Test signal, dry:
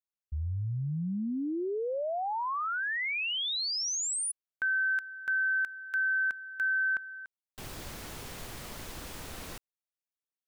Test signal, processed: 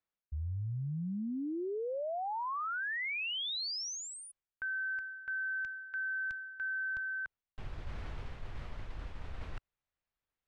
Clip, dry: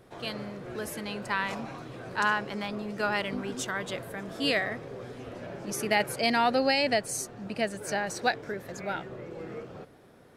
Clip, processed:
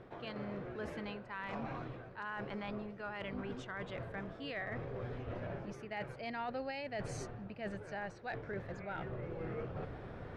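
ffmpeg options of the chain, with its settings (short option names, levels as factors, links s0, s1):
-af "lowpass=2500,asubboost=boost=4:cutoff=110,areverse,acompressor=threshold=0.00708:ratio=12:attack=0.25:release=619:detection=peak,areverse,volume=2.66"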